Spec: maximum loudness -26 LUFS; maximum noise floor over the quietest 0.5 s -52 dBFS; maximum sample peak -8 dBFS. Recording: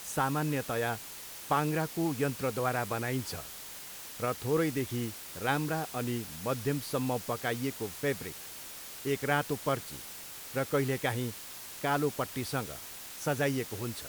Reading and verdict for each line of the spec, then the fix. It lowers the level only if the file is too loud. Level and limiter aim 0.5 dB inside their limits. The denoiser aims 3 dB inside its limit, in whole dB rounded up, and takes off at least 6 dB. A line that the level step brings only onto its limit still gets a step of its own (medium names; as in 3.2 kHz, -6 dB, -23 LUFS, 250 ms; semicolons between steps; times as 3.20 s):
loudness -33.5 LUFS: pass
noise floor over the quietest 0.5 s -45 dBFS: fail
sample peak -13.0 dBFS: pass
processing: noise reduction 10 dB, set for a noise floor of -45 dBFS